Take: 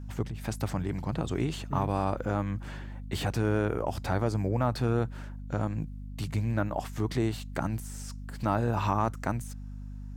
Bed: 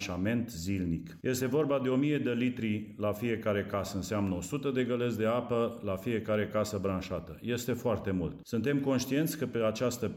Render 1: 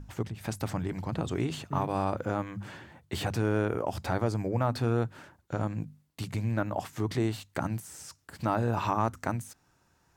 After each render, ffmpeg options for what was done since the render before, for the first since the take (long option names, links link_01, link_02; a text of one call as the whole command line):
ffmpeg -i in.wav -af "bandreject=frequency=50:width_type=h:width=6,bandreject=frequency=100:width_type=h:width=6,bandreject=frequency=150:width_type=h:width=6,bandreject=frequency=200:width_type=h:width=6,bandreject=frequency=250:width_type=h:width=6" out.wav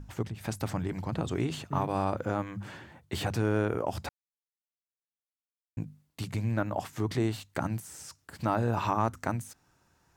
ffmpeg -i in.wav -filter_complex "[0:a]asplit=3[link_01][link_02][link_03];[link_01]atrim=end=4.09,asetpts=PTS-STARTPTS,afade=type=out:start_time=4.086:duration=0.004:curve=hsin[link_04];[link_02]atrim=start=4.09:end=5.77,asetpts=PTS-STARTPTS,volume=0[link_05];[link_03]atrim=start=5.77,asetpts=PTS-STARTPTS,afade=type=in:duration=0.004:curve=hsin[link_06];[link_04][link_05][link_06]concat=n=3:v=0:a=1" out.wav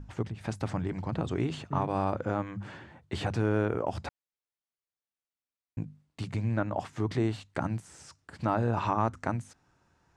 ffmpeg -i in.wav -af "lowpass=frequency=10000:width=0.5412,lowpass=frequency=10000:width=1.3066,aemphasis=mode=reproduction:type=cd" out.wav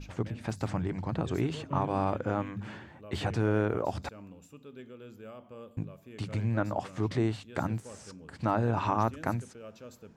ffmpeg -i in.wav -i bed.wav -filter_complex "[1:a]volume=-17dB[link_01];[0:a][link_01]amix=inputs=2:normalize=0" out.wav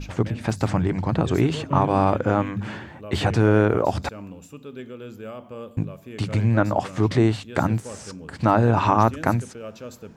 ffmpeg -i in.wav -af "volume=10dB" out.wav